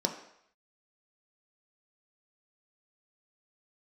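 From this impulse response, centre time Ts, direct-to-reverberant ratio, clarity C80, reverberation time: 19 ms, 3.0 dB, 11.0 dB, 0.70 s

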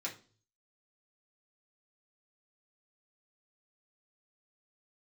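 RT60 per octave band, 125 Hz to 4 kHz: 0.85, 0.50, 0.45, 0.35, 0.30, 0.40 s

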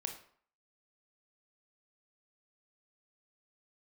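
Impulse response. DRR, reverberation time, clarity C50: 4.5 dB, 0.55 s, 8.5 dB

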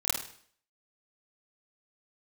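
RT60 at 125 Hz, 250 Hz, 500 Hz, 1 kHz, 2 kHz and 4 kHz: 0.55, 0.55, 0.55, 0.55, 0.55, 0.55 s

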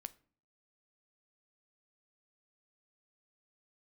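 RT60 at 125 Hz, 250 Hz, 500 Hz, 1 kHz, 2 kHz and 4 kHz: 0.65, 0.65, 0.50, 0.45, 0.40, 0.30 s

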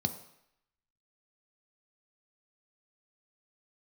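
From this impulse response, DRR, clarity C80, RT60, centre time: 7.0 dB, 14.0 dB, 0.75 s, 10 ms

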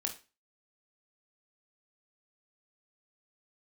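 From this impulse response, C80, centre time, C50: 17.5 dB, 14 ms, 11.0 dB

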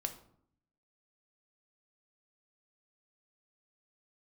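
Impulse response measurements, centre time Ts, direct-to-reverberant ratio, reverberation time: 10 ms, 6.0 dB, 0.65 s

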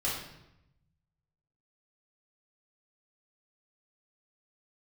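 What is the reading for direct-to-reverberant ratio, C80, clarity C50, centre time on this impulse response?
-7.5 dB, 5.5 dB, 2.5 dB, 52 ms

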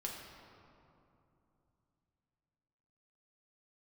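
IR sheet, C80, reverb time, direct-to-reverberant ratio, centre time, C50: 3.5 dB, 2.9 s, -2.0 dB, 90 ms, 2.0 dB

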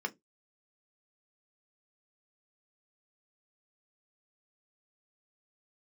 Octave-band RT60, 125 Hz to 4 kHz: 0.25, 0.20, 0.20, 0.15, 0.15, 0.15 s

